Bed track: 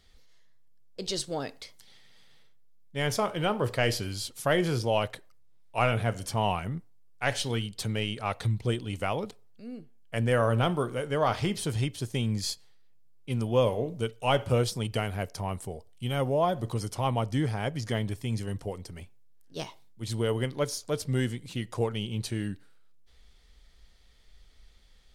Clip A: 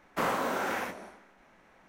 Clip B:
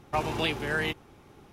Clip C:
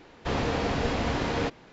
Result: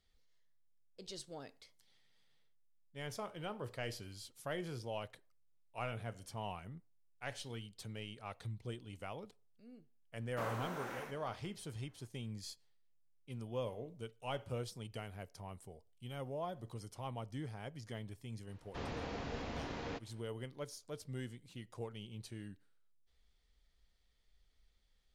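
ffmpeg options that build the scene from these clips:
-filter_complex "[0:a]volume=0.158[s0];[3:a]aresample=16000,aresample=44100[s1];[1:a]atrim=end=1.88,asetpts=PTS-STARTPTS,volume=0.211,afade=t=in:d=0.004:c=hsin,afade=t=out:st=1.876:d=0.004:c=hsin,adelay=10200[s2];[s1]atrim=end=1.72,asetpts=PTS-STARTPTS,volume=0.178,afade=t=in:d=0.004:c=hsin,afade=t=out:st=1.716:d=0.004:c=hsin,adelay=18490[s3];[s0][s2][s3]amix=inputs=3:normalize=0"

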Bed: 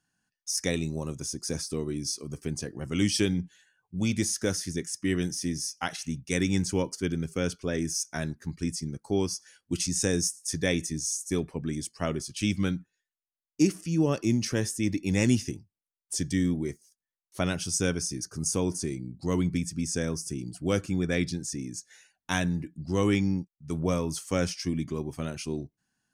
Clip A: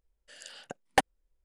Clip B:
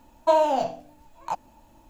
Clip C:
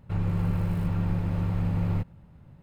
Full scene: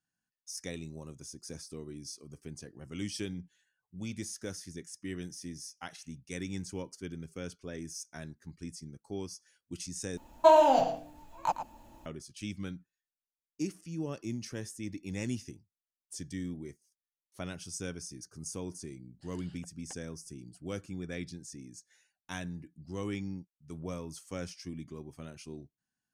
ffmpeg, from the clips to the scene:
-filter_complex "[0:a]volume=0.251[s0];[2:a]asplit=2[s1][s2];[s2]adelay=110.8,volume=0.316,highshelf=f=4000:g=-2.49[s3];[s1][s3]amix=inputs=2:normalize=0[s4];[1:a]acompressor=threshold=0.0141:ratio=6:attack=3.2:release=140:knee=1:detection=peak[s5];[s0]asplit=2[s6][s7];[s6]atrim=end=10.174[s8];[s4]atrim=end=1.89,asetpts=PTS-STARTPTS,volume=0.944[s9];[s7]atrim=start=12.056[s10];[s5]atrim=end=1.44,asetpts=PTS-STARTPTS,volume=0.224,afade=t=in:d=0.004:c=hsin,afade=t=out:st=1.436:d=0.004:c=hsin,adelay=18930[s11];[s8][s9]acrossfade=d=0.004:c1=hsin:c2=hsin[s12];[s12][s10]acrossfade=d=0.004:c1=hsin:c2=hsin[s13];[s13][s11]amix=inputs=2:normalize=0"

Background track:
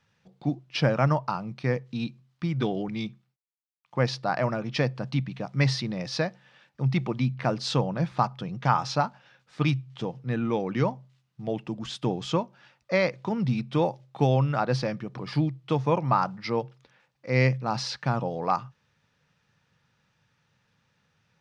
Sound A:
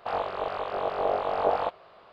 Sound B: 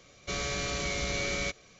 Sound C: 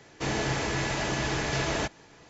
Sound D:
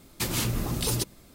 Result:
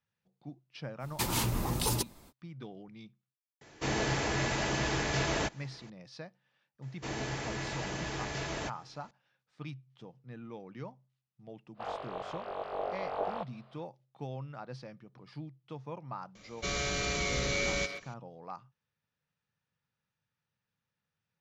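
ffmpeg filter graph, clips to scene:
-filter_complex "[3:a]asplit=2[s0][s1];[0:a]volume=0.119[s2];[4:a]equalizer=f=910:t=o:w=0.47:g=9.5[s3];[2:a]asplit=2[s4][s5];[s5]adelay=130,highpass=300,lowpass=3400,asoftclip=type=hard:threshold=0.0398,volume=0.447[s6];[s4][s6]amix=inputs=2:normalize=0[s7];[s3]atrim=end=1.34,asetpts=PTS-STARTPTS,volume=0.668,afade=t=in:d=0.05,afade=t=out:st=1.29:d=0.05,adelay=990[s8];[s0]atrim=end=2.29,asetpts=PTS-STARTPTS,volume=0.75,afade=t=in:d=0.004:c=hsin,afade=t=out:st=2.286:d=0.004:c=hsin,adelay=159201S[s9];[s1]atrim=end=2.29,asetpts=PTS-STARTPTS,volume=0.376,afade=t=in:d=0.004:c=hsin,afade=t=out:st=2.286:d=0.004:c=hsin,adelay=300762S[s10];[1:a]atrim=end=2.12,asetpts=PTS-STARTPTS,volume=0.335,afade=t=in:d=0.05,afade=t=out:st=2.07:d=0.05,adelay=11740[s11];[s7]atrim=end=1.79,asetpts=PTS-STARTPTS,volume=0.944,afade=t=in:d=0.004:c=hsin,afade=t=out:st=1.786:d=0.004:c=hsin,adelay=16350[s12];[s2][s8][s9][s10][s11][s12]amix=inputs=6:normalize=0"

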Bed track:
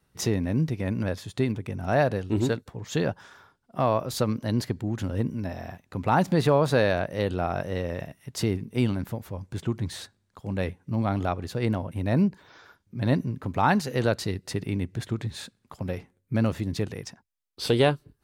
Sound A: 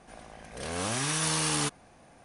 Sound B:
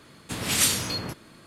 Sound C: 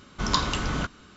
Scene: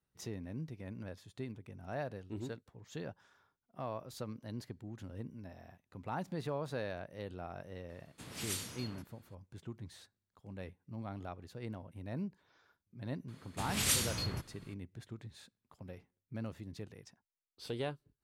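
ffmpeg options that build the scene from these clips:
-filter_complex "[2:a]asplit=2[s0][s1];[0:a]volume=0.133[s2];[s1]asubboost=boost=9.5:cutoff=140[s3];[s0]atrim=end=1.46,asetpts=PTS-STARTPTS,volume=0.126,afade=t=in:d=0.004:c=hsin,afade=t=out:st=1.456:d=0.004:c=hsin,adelay=7890[s4];[s3]atrim=end=1.46,asetpts=PTS-STARTPTS,volume=0.355,afade=t=in:d=0.004:c=hsin,afade=t=out:st=1.456:d=0.004:c=hsin,adelay=13280[s5];[s2][s4][s5]amix=inputs=3:normalize=0"

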